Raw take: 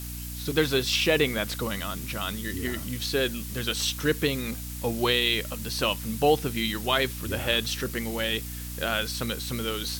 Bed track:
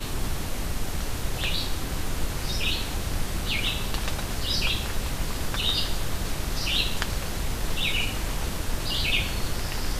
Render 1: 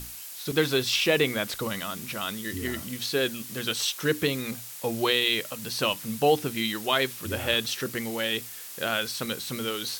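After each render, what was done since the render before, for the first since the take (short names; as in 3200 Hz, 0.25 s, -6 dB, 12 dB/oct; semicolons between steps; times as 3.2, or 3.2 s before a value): notches 60/120/180/240/300 Hz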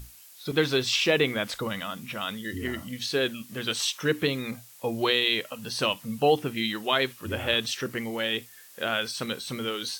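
noise print and reduce 10 dB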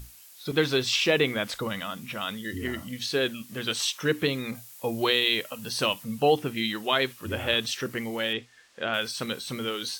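4.55–6.04 high shelf 8900 Hz +5.5 dB; 8.33–8.94 air absorption 110 m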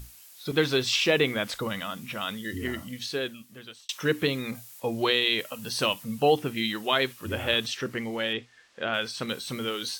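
2.71–3.89 fade out; 4.8–5.39 high shelf 9500 Hz -9 dB; 7.67–9.29 high shelf 9100 Hz -11.5 dB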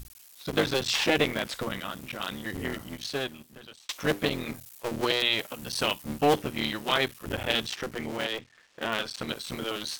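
cycle switcher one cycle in 3, muted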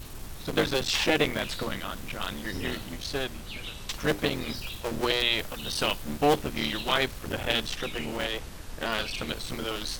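add bed track -12.5 dB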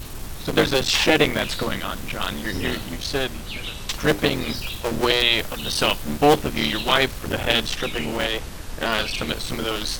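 gain +7 dB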